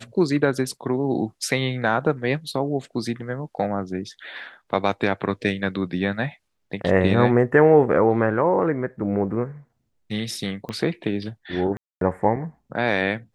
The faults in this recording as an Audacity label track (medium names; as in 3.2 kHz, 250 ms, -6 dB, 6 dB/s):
10.690000	10.690000	pop -19 dBFS
11.770000	12.010000	dropout 242 ms